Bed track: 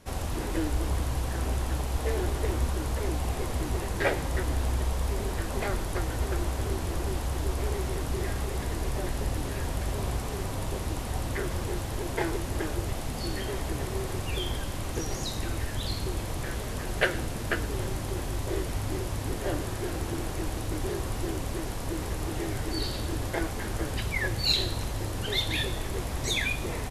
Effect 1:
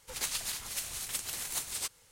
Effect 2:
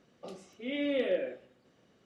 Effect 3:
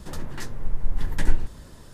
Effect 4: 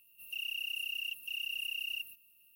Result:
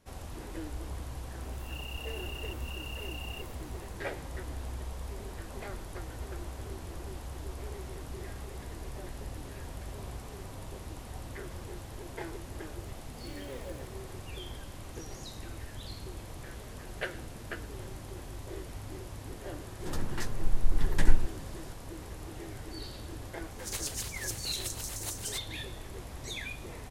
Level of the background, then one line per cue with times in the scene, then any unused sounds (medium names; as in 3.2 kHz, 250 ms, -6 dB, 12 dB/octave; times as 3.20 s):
bed track -11 dB
1.40 s: add 4 -9 dB + reverse spectral sustain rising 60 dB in 0.37 s
12.56 s: add 2 -15.5 dB + send-on-delta sampling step -42 dBFS
19.80 s: add 3 -1.5 dB
23.51 s: add 1 -4 dB + LFO high-pass square 6.9 Hz 390–5900 Hz